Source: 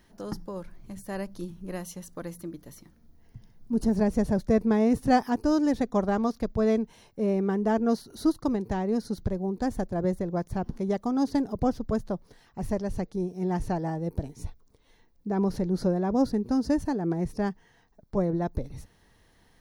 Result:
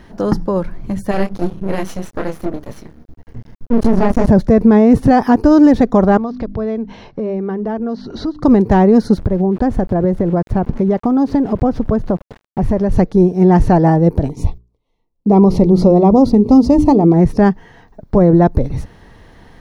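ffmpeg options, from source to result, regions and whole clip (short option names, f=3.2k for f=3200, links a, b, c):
-filter_complex "[0:a]asettb=1/sr,asplit=3[a][b][c];[a]atrim=end=1.114[d];[b]atrim=start=1.11:end=4.28,asetpts=PTS-STARTPTS,afade=t=in:d=0.004:c=qsin,afade=t=out:st=3.166:d=0.004:c=qsin,asplit=2[e][f];[f]adelay=26,volume=-4dB[g];[e][g]amix=inputs=2:normalize=0,atrim=end_sample=139797,aeval=exprs='max(val(0),0)':c=same[h];[c]atrim=start=4.276[i];[d][h]acrossfade=d=0.004:c1=hsin:c2=qsin[j];[j][i]acrossfade=d=0.004:c1=qsin:c2=hsin,asettb=1/sr,asplit=3[k][l][m];[k]atrim=end=6.174[n];[l]atrim=start=6.17:end=8.43,asetpts=PTS-STARTPTS,afade=t=in:d=0.004:c=qsin,afade=t=out:st=2.256:d=0.004:c=qsin,lowpass=f=5.4k:w=0.5412,lowpass=f=5.4k:w=1.3066,bandreject=f=50:t=h:w=6,bandreject=f=100:t=h:w=6,bandreject=f=150:t=h:w=6,bandreject=f=200:t=h:w=6,bandreject=f=250:t=h:w=6,bandreject=f=300:t=h:w=6,acompressor=threshold=-40dB:ratio=4:attack=3.2:release=140:knee=1:detection=peak[o];[m]atrim=start=8.426[p];[n][o]acrossfade=d=0.004:c1=hsin:c2=qsin[q];[q][p]acrossfade=d=0.004:c1=qsin:c2=hsin,asettb=1/sr,asplit=3[r][s][t];[r]atrim=end=9.174[u];[s]atrim=start=9.17:end=12.92,asetpts=PTS-STARTPTS,afade=t=in:d=0.004:c=qsin,afade=t=out:st=3.746:d=0.004:c=qsin,aeval=exprs='val(0)*gte(abs(val(0)),0.00355)':c=same,highshelf=f=4.1k:g=-9,acompressor=threshold=-31dB:ratio=4:attack=3.2:release=140:knee=1:detection=peak[v];[t]atrim=start=12.916[w];[u][v]acrossfade=d=0.004:c1=hsin:c2=qsin[x];[x][w]acrossfade=d=0.004:c1=qsin:c2=hsin,asettb=1/sr,asplit=3[y][z][aa];[y]atrim=end=14.294[ab];[z]atrim=start=14.29:end=17.14,asetpts=PTS-STARTPTS,afade=t=in:d=0.004:c=qsin,afade=t=out:st=2.846:d=0.004:c=qsin,agate=range=-26dB:threshold=-53dB:ratio=16:release=100:detection=peak,asuperstop=centerf=1600:order=4:qfactor=1.8,bandreject=f=60:t=h:w=6,bandreject=f=120:t=h:w=6,bandreject=f=180:t=h:w=6,bandreject=f=240:t=h:w=6,bandreject=f=300:t=h:w=6,bandreject=f=360:t=h:w=6,bandreject=f=420:t=h:w=6[ac];[aa]atrim=start=17.136[ad];[ab][ac]acrossfade=d=0.004:c1=hsin:c2=qsin[ae];[ae][ad]acrossfade=d=0.004:c1=qsin:c2=hsin,lowpass=f=1.8k:p=1,alimiter=level_in=21dB:limit=-1dB:release=50:level=0:latency=1,volume=-1dB"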